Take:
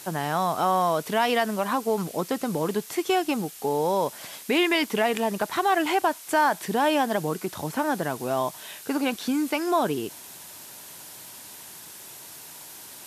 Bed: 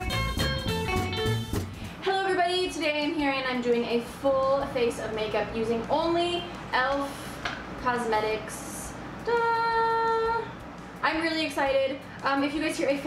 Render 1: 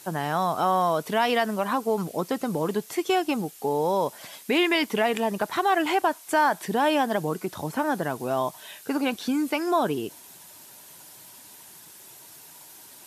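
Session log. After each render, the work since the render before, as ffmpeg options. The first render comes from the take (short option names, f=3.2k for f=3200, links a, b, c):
-af "afftdn=nr=6:nf=-44"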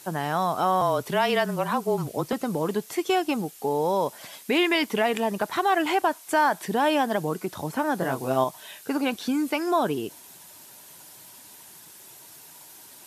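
-filter_complex "[0:a]asettb=1/sr,asplit=3[a][b][c];[a]atrim=end=0.814[d];[b]atrim=start=0.81:end=2.33,asetpts=PTS-STARTPTS,afade=t=in:d=0.004:c=qsin,afade=t=out:st=1.516:d=0.004:c=qsin,afreqshift=-27[e];[c]atrim=start=2.326[f];[d][e]acrossfade=d=0.004:c1=hsin:c2=qsin[g];[g][f]acrossfade=d=0.004:c1=qsin:c2=hsin,asettb=1/sr,asplit=3[h][i][j];[h]atrim=end=7.984[k];[i]atrim=start=7.98:end=8.44,asetpts=PTS-STARTPTS,afade=t=in:d=0.004:c=qsin,afade=t=out:st=0.456:d=0.004:c=qsin,asplit=2[l][m];[m]adelay=23,volume=-2.5dB[n];[l][n]amix=inputs=2:normalize=0,atrim=end_sample=20286[o];[j]atrim=start=8.436[p];[k][o]acrossfade=d=0.004:c1=hsin:c2=qsin[q];[q][p]acrossfade=d=0.004:c1=qsin:c2=hsin"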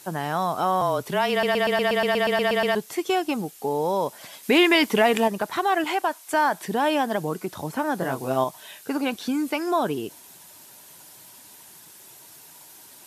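-filter_complex "[0:a]asettb=1/sr,asplit=3[a][b][c];[a]atrim=end=4.434[d];[b]atrim=start=4.43:end=5.28,asetpts=PTS-STARTPTS,afade=t=in:d=0.004:c=qsin,afade=t=out:st=0.846:d=0.004:c=qsin,acontrast=22[e];[c]atrim=start=5.276[f];[d][e]acrossfade=d=0.004:c1=hsin:c2=qsin[g];[g][f]acrossfade=d=0.004:c1=qsin:c2=hsin,asettb=1/sr,asplit=3[h][i][j];[h]atrim=end=5.844[k];[i]atrim=start=5.84:end=6.34,asetpts=PTS-STARTPTS,afade=t=in:d=0.004:c=qsin,afade=t=out:st=0.496:d=0.004:c=qsin,lowshelf=f=290:g=-9.5[l];[j]atrim=start=6.336[m];[k][l]acrossfade=d=0.004:c1=hsin:c2=qsin[n];[n][m]acrossfade=d=0.004:c1=qsin:c2=hsin,asplit=13[o][p][q][r][s][t][u][v][w][x][y][z][aa];[o]atrim=end=1.432[ab];[p]atrim=start=1.308:end=1.432[ac];[q]atrim=start=1.308:end=1.432[ad];[r]atrim=start=1.308:end=1.432[ae];[s]atrim=start=1.308:end=1.432[af];[t]atrim=start=1.308:end=1.432[ag];[u]atrim=start=1.308:end=1.432[ah];[v]atrim=start=1.308:end=1.432[ai];[w]atrim=start=1.308:end=1.432[aj];[x]atrim=start=1.308:end=1.432[ak];[y]atrim=start=1.308:end=1.432[al];[z]atrim=start=1.308:end=1.432[am];[aa]atrim=start=2.748[an];[ab][ac]acrossfade=d=0.004:c1=hsin:c2=hsin[ao];[ao][ad]acrossfade=d=0.004:c1=hsin:c2=hsin[ap];[ap][ae]acrossfade=d=0.004:c1=hsin:c2=hsin[aq];[aq][af]acrossfade=d=0.004:c1=hsin:c2=hsin[ar];[ar][ag]acrossfade=d=0.004:c1=hsin:c2=hsin[as];[as][ah]acrossfade=d=0.004:c1=hsin:c2=hsin[at];[at][ai]acrossfade=d=0.004:c1=hsin:c2=hsin[au];[au][aj]acrossfade=d=0.004:c1=hsin:c2=hsin[av];[av][ak]acrossfade=d=0.004:c1=hsin:c2=hsin[aw];[aw][al]acrossfade=d=0.004:c1=hsin:c2=hsin[ax];[ax][am]acrossfade=d=0.004:c1=hsin:c2=hsin[ay];[ay][an]acrossfade=d=0.004:c1=hsin:c2=hsin"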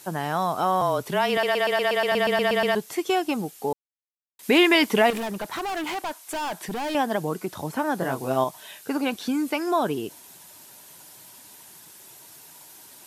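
-filter_complex "[0:a]asettb=1/sr,asplit=3[a][b][c];[a]atrim=end=1.374[d];[b]atrim=start=1.37:end=2.12,asetpts=PTS-STARTPTS,afade=t=in:d=0.004:c=qsin,afade=t=out:st=0.746:d=0.004:c=qsin,highpass=340[e];[c]atrim=start=2.116[f];[d][e]acrossfade=d=0.004:c1=hsin:c2=qsin[g];[g][f]acrossfade=d=0.004:c1=qsin:c2=hsin,asettb=1/sr,asplit=3[h][i][j];[h]atrim=end=5.104[k];[i]atrim=start=5.1:end=6.95,asetpts=PTS-STARTPTS,afade=t=in:d=0.004:c=qsin,afade=t=out:st=1.846:d=0.004:c=qsin,volume=27dB,asoftclip=hard,volume=-27dB[l];[j]atrim=start=6.946[m];[k][l]acrossfade=d=0.004:c1=hsin:c2=qsin[n];[n][m]acrossfade=d=0.004:c1=qsin:c2=hsin,asplit=3[o][p][q];[o]atrim=end=3.73,asetpts=PTS-STARTPTS,afade=t=out:st=3.726:d=0.004:c=hsin[r];[p]atrim=start=3.73:end=4.39,asetpts=PTS-STARTPTS,volume=0[s];[q]atrim=start=4.39,asetpts=PTS-STARTPTS,afade=t=in:d=0.004:c=hsin[t];[r][s][t]concat=n=3:v=0:a=1"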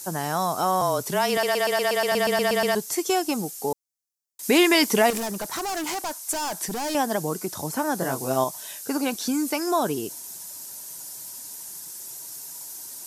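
-af "highshelf=f=4.3k:t=q:w=1.5:g=9"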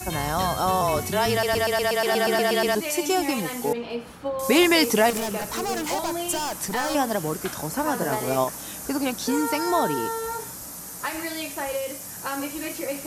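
-filter_complex "[1:a]volume=-4.5dB[a];[0:a][a]amix=inputs=2:normalize=0"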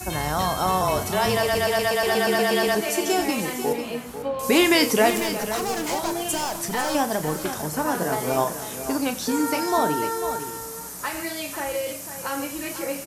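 -filter_complex "[0:a]asplit=2[a][b];[b]adelay=33,volume=-11dB[c];[a][c]amix=inputs=2:normalize=0,asplit=2[d][e];[e]aecho=0:1:91|496:0.141|0.299[f];[d][f]amix=inputs=2:normalize=0"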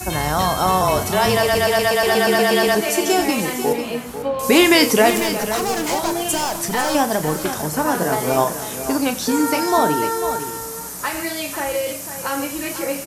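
-af "volume=5dB,alimiter=limit=-2dB:level=0:latency=1"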